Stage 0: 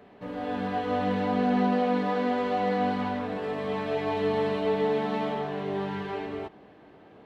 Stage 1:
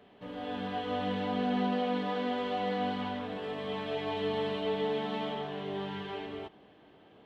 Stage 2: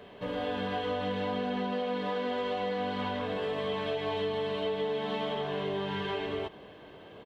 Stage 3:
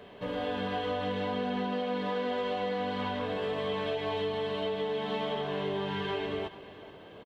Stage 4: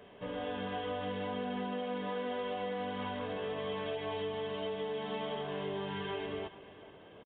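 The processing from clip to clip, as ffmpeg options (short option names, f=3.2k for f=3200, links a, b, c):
-af "equalizer=f=3.2k:t=o:w=0.43:g=10,volume=-6dB"
-af "aecho=1:1:1.9:0.34,acompressor=threshold=-38dB:ratio=6,volume=8.5dB"
-af "aecho=1:1:430:0.15"
-af "aresample=8000,aresample=44100,volume=-5dB"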